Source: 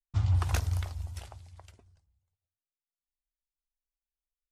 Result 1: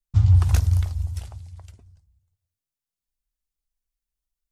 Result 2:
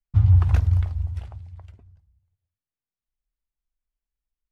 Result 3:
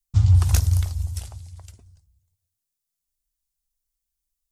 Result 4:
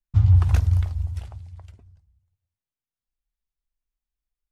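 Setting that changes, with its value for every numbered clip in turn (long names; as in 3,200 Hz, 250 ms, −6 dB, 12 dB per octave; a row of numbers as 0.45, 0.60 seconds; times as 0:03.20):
bass and treble, treble: +5, −14, +14, −5 decibels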